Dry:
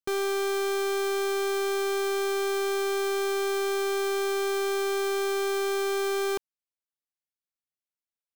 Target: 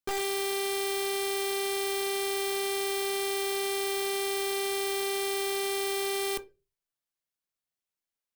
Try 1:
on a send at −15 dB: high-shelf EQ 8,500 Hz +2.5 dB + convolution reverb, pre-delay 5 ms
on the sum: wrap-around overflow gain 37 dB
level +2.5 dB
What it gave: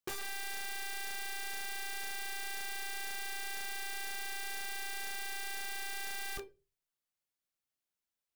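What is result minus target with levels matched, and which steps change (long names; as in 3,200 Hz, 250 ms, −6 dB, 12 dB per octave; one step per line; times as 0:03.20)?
wrap-around overflow: distortion +19 dB
change: wrap-around overflow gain 29.5 dB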